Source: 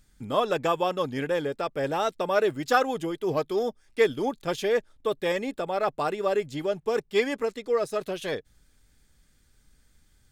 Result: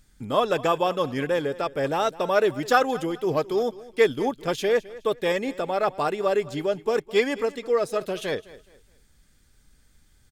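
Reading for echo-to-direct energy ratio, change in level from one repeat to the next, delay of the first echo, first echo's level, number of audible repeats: -18.5 dB, -10.0 dB, 0.21 s, -19.0 dB, 2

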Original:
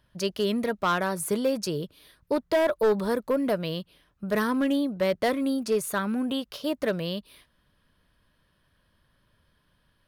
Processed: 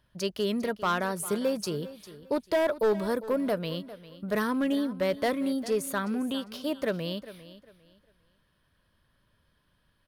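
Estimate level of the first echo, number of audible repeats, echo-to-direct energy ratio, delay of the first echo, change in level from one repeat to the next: -16.0 dB, 2, -15.5 dB, 0.401 s, -11.5 dB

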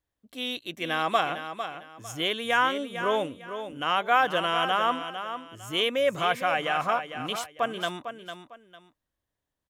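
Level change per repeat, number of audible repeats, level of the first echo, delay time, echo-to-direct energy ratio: -11.5 dB, 2, -9.5 dB, 0.452 s, -9.0 dB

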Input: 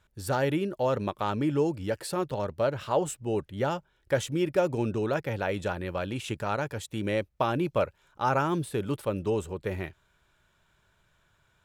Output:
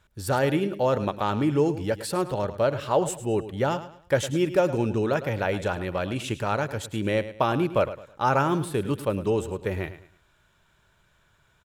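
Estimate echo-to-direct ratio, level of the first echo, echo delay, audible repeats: -13.0 dB, -13.5 dB, 0.106 s, 3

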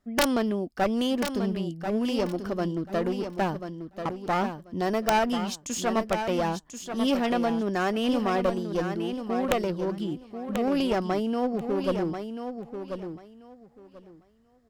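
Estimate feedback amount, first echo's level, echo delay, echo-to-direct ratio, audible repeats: 19%, -8.0 dB, 1.038 s, -8.0 dB, 2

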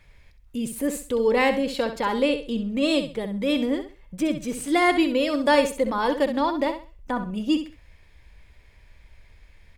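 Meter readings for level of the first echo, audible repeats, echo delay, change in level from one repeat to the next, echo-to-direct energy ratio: -9.5 dB, 3, 65 ms, -11.5 dB, -9.0 dB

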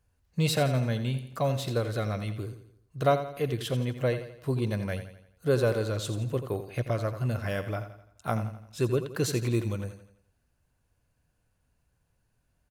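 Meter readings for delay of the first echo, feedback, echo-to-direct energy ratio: 85 ms, 46%, -10.0 dB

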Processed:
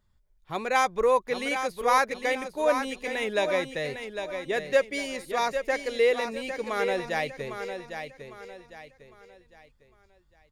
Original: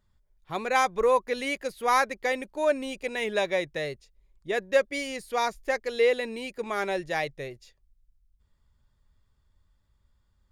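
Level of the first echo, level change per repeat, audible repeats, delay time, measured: -8.0 dB, -9.0 dB, 4, 0.804 s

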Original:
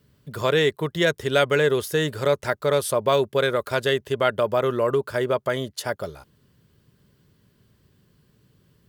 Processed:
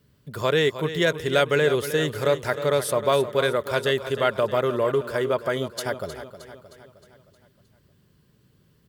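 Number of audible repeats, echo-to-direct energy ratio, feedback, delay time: 5, -10.5 dB, 53%, 0.311 s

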